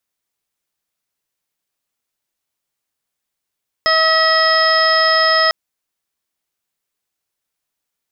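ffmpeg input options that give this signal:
ffmpeg -f lavfi -i "aevalsrc='0.133*sin(2*PI*641*t)+0.158*sin(2*PI*1282*t)+0.15*sin(2*PI*1923*t)+0.015*sin(2*PI*2564*t)+0.0422*sin(2*PI*3205*t)+0.0266*sin(2*PI*3846*t)+0.0251*sin(2*PI*4487*t)+0.158*sin(2*PI*5128*t)':duration=1.65:sample_rate=44100" out.wav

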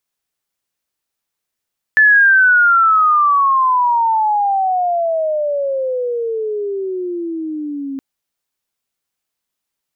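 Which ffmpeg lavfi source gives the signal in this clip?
ffmpeg -f lavfi -i "aevalsrc='pow(10,(-6-15.5*t/6.02)/20)*sin(2*PI*1750*6.02/(-32.5*log(2)/12)*(exp(-32.5*log(2)/12*t/6.02)-1))':duration=6.02:sample_rate=44100" out.wav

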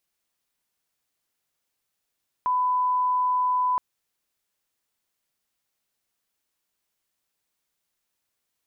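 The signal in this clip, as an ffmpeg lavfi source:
ffmpeg -f lavfi -i "sine=frequency=1000:duration=1.32:sample_rate=44100,volume=-1.94dB" out.wav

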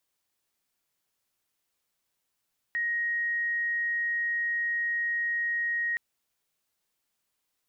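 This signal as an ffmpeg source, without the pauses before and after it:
ffmpeg -f lavfi -i "aevalsrc='0.0501*sin(2*PI*1880*t)':duration=3.22:sample_rate=44100" out.wav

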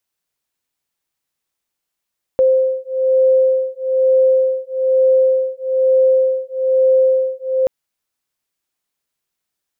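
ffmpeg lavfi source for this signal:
ffmpeg -f lavfi -i "aevalsrc='0.188*(sin(2*PI*522*t)+sin(2*PI*523.1*t))':duration=5.28:sample_rate=44100" out.wav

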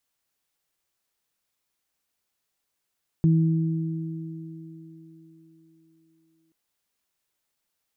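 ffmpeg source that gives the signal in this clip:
ffmpeg -f lavfi -i "aevalsrc='0.178*pow(10,-3*t/3.29)*sin(2*PI*162*t)+0.0531*pow(10,-3*t/4.85)*sin(2*PI*324*t)':duration=3.28:sample_rate=44100" out.wav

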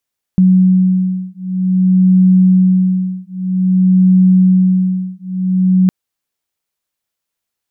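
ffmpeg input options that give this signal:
ffmpeg -f lavfi -i "aevalsrc='0.282*(sin(2*PI*185*t)+sin(2*PI*185.52*t))':duration=5.51:sample_rate=44100" out.wav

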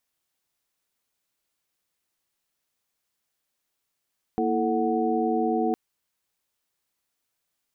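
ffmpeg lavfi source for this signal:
ffmpeg -f lavfi -i "aevalsrc='0.0447*(sin(2*PI*233.08*t)+sin(2*PI*329.63*t)+sin(2*PI*440*t)+sin(2*PI*739.99*t))':duration=1.36:sample_rate=44100" out.wav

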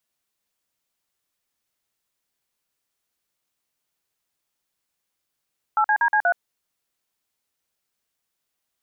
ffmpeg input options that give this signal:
ffmpeg -f lavfi -i "aevalsrc='0.119*clip(min(mod(t,0.12),0.073-mod(t,0.12))/0.002,0,1)*(eq(floor(t/0.12),0)*(sin(2*PI*852*mod(t,0.12))+sin(2*PI*1336*mod(t,0.12)))+eq(floor(t/0.12),1)*(sin(2*PI*852*mod(t,0.12))+sin(2*PI*1633*mod(t,0.12)))+eq(floor(t/0.12),2)*(sin(2*PI*941*mod(t,0.12))+sin(2*PI*1633*mod(t,0.12)))+eq(floor(t/0.12),3)*(sin(2*PI*852*mod(t,0.12))+sin(2*PI*1633*mod(t,0.12)))+eq(floor(t/0.12),4)*(sin(2*PI*697*mod(t,0.12))+sin(2*PI*1477*mod(t,0.12))))':duration=0.6:sample_rate=44100" out.wav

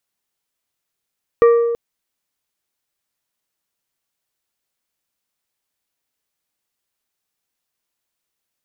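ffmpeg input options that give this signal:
ffmpeg -f lavfi -i "aevalsrc='0.501*pow(10,-3*t/1.53)*sin(2*PI*468*t)+0.158*pow(10,-3*t/0.806)*sin(2*PI*1170*t)+0.0501*pow(10,-3*t/0.58)*sin(2*PI*1872*t)+0.0158*pow(10,-3*t/0.496)*sin(2*PI*2340*t)':duration=0.33:sample_rate=44100" out.wav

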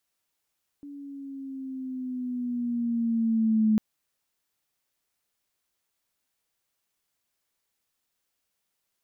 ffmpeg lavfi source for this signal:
ffmpeg -f lavfi -i "aevalsrc='pow(10,(-18+21*(t/2.95-1))/20)*sin(2*PI*287*2.95/(-5*log(2)/12)*(exp(-5*log(2)/12*t/2.95)-1))':duration=2.95:sample_rate=44100" out.wav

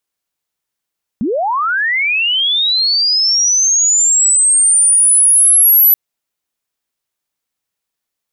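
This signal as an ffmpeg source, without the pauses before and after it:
ffmpeg -f lavfi -i "aevalsrc='pow(10,(-13.5+8.5*t/4.73)/20)*sin(2*PI*(190*t+11810*t*t/(2*4.73)))':duration=4.73:sample_rate=44100" out.wav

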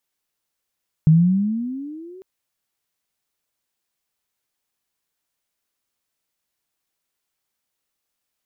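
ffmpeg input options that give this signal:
ffmpeg -f lavfi -i "aevalsrc='pow(10,(-8-30*t/1.15)/20)*sin(2*PI*153*1.15/(16*log(2)/12)*(exp(16*log(2)/12*t/1.15)-1))':duration=1.15:sample_rate=44100" out.wav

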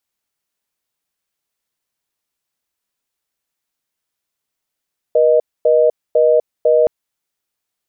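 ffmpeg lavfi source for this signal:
ffmpeg -f lavfi -i "aevalsrc='0.266*(sin(2*PI*480*t)+sin(2*PI*620*t))*clip(min(mod(t,0.5),0.25-mod(t,0.5))/0.005,0,1)':duration=1.72:sample_rate=44100" out.wav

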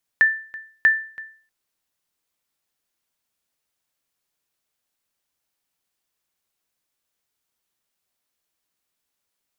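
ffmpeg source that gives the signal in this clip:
ffmpeg -f lavfi -i "aevalsrc='0.398*(sin(2*PI*1770*mod(t,0.64))*exp(-6.91*mod(t,0.64)/0.44)+0.0944*sin(2*PI*1770*max(mod(t,0.64)-0.33,0))*exp(-6.91*max(mod(t,0.64)-0.33,0)/0.44))':duration=1.28:sample_rate=44100" out.wav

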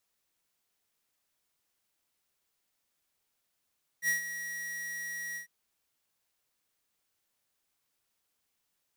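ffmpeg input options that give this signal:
ffmpeg -f lavfi -i "aevalsrc='0.0447*(2*lt(mod(1910*t,1),0.5)-1)':duration=1.449:sample_rate=44100,afade=type=in:duration=0.064,afade=type=out:start_time=0.064:duration=0.124:silence=0.266,afade=type=out:start_time=1.34:duration=0.109" out.wav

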